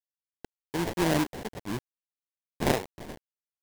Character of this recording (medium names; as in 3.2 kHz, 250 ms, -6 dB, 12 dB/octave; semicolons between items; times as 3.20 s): a quantiser's noise floor 6-bit, dither none; tremolo triangle 1.2 Hz, depth 70%; aliases and images of a low sample rate 1.3 kHz, jitter 20%